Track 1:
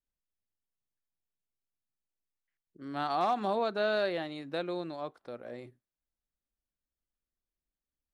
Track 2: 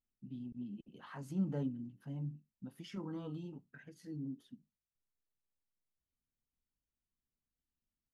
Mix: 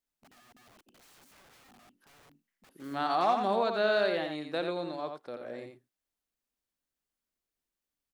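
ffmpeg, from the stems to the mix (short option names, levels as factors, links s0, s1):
-filter_complex "[0:a]lowshelf=f=110:g=-11,volume=1.26,asplit=3[s0][s1][s2];[s1]volume=0.501[s3];[1:a]highpass=f=270:w=0.5412,highpass=f=270:w=1.3066,acompressor=threshold=0.00355:ratio=10,aeval=exprs='(mod(562*val(0)+1,2)-1)/562':c=same,volume=1[s4];[s2]apad=whole_len=358804[s5];[s4][s5]sidechaincompress=threshold=0.0141:ratio=8:attack=48:release=1490[s6];[s3]aecho=0:1:86:1[s7];[s0][s6][s7]amix=inputs=3:normalize=0"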